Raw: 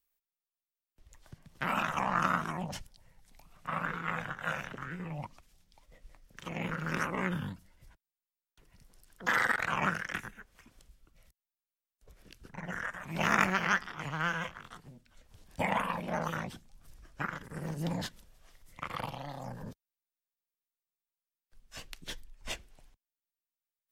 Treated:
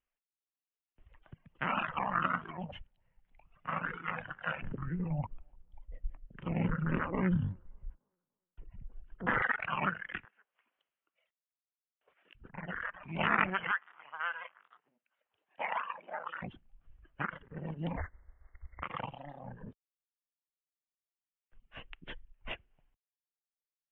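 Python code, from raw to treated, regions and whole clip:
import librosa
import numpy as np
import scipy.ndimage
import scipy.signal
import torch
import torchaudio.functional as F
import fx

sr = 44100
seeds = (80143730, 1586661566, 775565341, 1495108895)

y = fx.chain(x, sr, fx.tilt_eq(slope=-3.5),
    fx.echo_wet_bandpass(ms=293, feedback_pct=34, hz=600.0, wet_db=-21.5), at=(4.62, 9.42))
y = fx.chain(y, sr, fx.highpass(hz=630.0, slope=12),
    fx.dynamic_eq(hz=1900.0, q=1.2, threshold_db=-60.0, ratio=4.0, max_db=-5), at=(10.25, 12.35))
y = fx.chain(y, sr, fx.highpass(hz=720.0, slope=12),
    fx.air_absorb(metres=210.0), at=(13.71, 16.42))
y = fx.spec_flatten(y, sr, power=0.49, at=(17.96, 18.82), fade=0.02)
y = fx.brickwall_bandstop(y, sr, low_hz=2200.0, high_hz=6300.0, at=(17.96, 18.82), fade=0.02)
y = fx.low_shelf_res(y, sr, hz=100.0, db=13.5, q=3.0, at=(17.96, 18.82), fade=0.02)
y = fx.dereverb_blind(y, sr, rt60_s=1.9)
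y = scipy.signal.sosfilt(scipy.signal.ellip(4, 1.0, 40, 3000.0, 'lowpass', fs=sr, output='sos'), y)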